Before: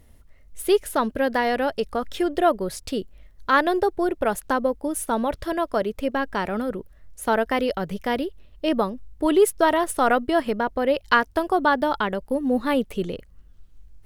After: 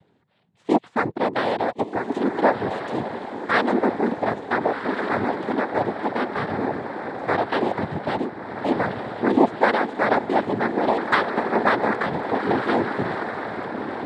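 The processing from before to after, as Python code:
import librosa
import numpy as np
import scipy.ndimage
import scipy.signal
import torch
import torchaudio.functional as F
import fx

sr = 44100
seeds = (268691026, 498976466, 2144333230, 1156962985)

y = scipy.signal.sosfilt(scipy.signal.butter(2, 2000.0, 'lowpass', fs=sr, output='sos'), x)
y = fx.echo_diffused(y, sr, ms=1441, feedback_pct=41, wet_db=-6.0)
y = fx.noise_vocoder(y, sr, seeds[0], bands=6)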